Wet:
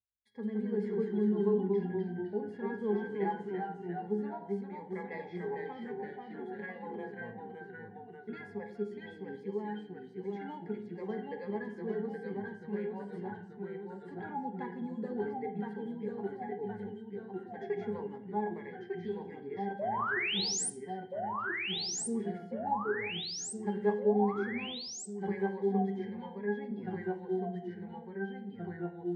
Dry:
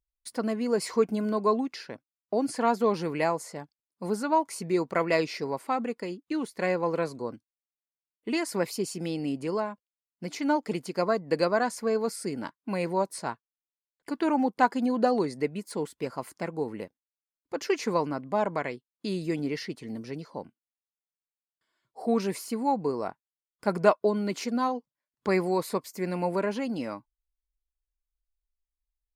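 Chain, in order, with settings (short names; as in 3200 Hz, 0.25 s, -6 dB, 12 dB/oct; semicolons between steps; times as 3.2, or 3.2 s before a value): bell 2100 Hz +14.5 dB 0.34 oct; octave resonator G#, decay 0.18 s; painted sound rise, 19.79–20.7, 560–10000 Hz -34 dBFS; echoes that change speed 0.148 s, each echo -1 st, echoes 3; on a send: reverb RT60 0.65 s, pre-delay 3 ms, DRR 6 dB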